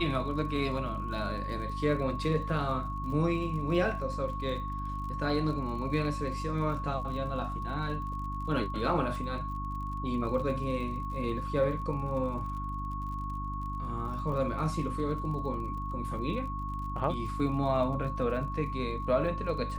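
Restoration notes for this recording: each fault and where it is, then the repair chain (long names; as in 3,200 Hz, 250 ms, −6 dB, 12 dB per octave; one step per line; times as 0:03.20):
surface crackle 46 per second −41 dBFS
mains hum 50 Hz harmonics 6 −37 dBFS
whistle 1,100 Hz −37 dBFS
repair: click removal
hum removal 50 Hz, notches 6
notch filter 1,100 Hz, Q 30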